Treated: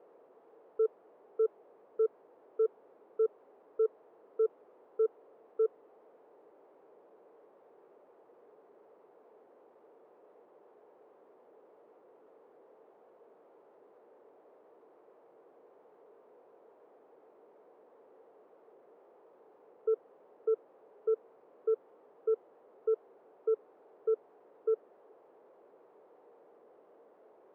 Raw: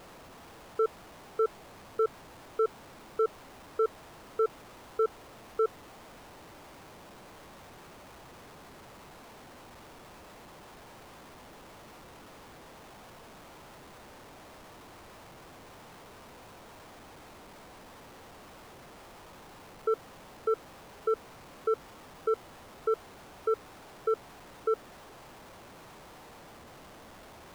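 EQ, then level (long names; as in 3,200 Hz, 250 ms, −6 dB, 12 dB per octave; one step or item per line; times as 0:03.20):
four-pole ladder band-pass 490 Hz, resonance 60%
+1.5 dB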